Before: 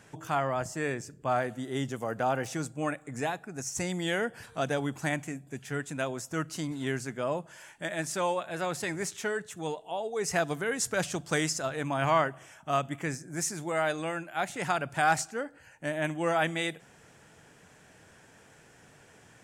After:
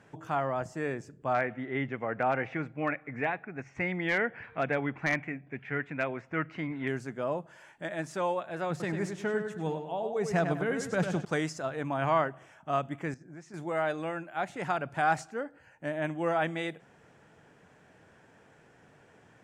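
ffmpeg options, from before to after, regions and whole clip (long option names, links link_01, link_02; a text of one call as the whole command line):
ffmpeg -i in.wav -filter_complex "[0:a]asettb=1/sr,asplit=3[link_01][link_02][link_03];[link_01]atrim=end=1.344[link_04];[link_02]atrim=start=1.34:end=6.88,asetpts=PTS-STARTPTS,afade=type=in:duration=0.004:curve=qsin,afade=type=out:start_time=5.536:duration=0.004:curve=qsin,lowpass=frequency=2200:width_type=q:width=4.6,aeval=exprs='0.168*(abs(mod(val(0)/0.168+3,4)-2)-1)':channel_layout=same[link_05];[link_03]atrim=start=6.876[link_06];[link_04][link_05]acrossfade=duration=0.004:curve1=hsin:curve2=qsin[link_07];[link_07][link_06]acrossfade=duration=0.004:curve1=qsin:curve2=hsin,asettb=1/sr,asplit=3[link_08][link_09][link_10];[link_08]atrim=end=8.704[link_11];[link_09]atrim=start=8.7:end=11.25,asetpts=PTS-STARTPTS,afade=type=in:duration=0.004:curve=qsin,afade=type=out:start_time=2.546:duration=0.004:curve=qsin,equalizer=frequency=160:width_type=o:width=1.2:gain=7.5,asplit=2[link_12][link_13];[link_13]adelay=99,lowpass=frequency=4700:poles=1,volume=-6.5dB,asplit=2[link_14][link_15];[link_15]adelay=99,lowpass=frequency=4700:poles=1,volume=0.39,asplit=2[link_16][link_17];[link_17]adelay=99,lowpass=frequency=4700:poles=1,volume=0.39,asplit=2[link_18][link_19];[link_19]adelay=99,lowpass=frequency=4700:poles=1,volume=0.39,asplit=2[link_20][link_21];[link_21]adelay=99,lowpass=frequency=4700:poles=1,volume=0.39[link_22];[link_12][link_14][link_16][link_18][link_20][link_22]amix=inputs=6:normalize=0,atrim=end_sample=112455[link_23];[link_10]atrim=start=11.246[link_24];[link_11][link_23]acrossfade=duration=0.004:curve1=hsin:curve2=qsin[link_25];[link_25][link_24]acrossfade=duration=0.004:curve1=qsin:curve2=hsin,asettb=1/sr,asplit=3[link_26][link_27][link_28];[link_26]atrim=end=13.144[link_29];[link_27]atrim=start=13.14:end=13.54,asetpts=PTS-STARTPTS,afade=type=in:duration=0.004:curve=qsin,afade=type=out:start_time=0.396:duration=0.004:curve=qsin,lowpass=5400,acompressor=threshold=-41dB:ratio=6:attack=3.2:release=140:knee=1:detection=peak,agate=range=-33dB:threshold=-44dB:ratio=3:release=100:detection=peak[link_30];[link_28]atrim=start=13.536[link_31];[link_29][link_30]acrossfade=duration=0.004:curve1=hsin:curve2=qsin[link_32];[link_32][link_31]acrossfade=duration=0.004:curve1=qsin:curve2=hsin,lowpass=frequency=1600:poles=1,lowshelf=frequency=87:gain=-7" out.wav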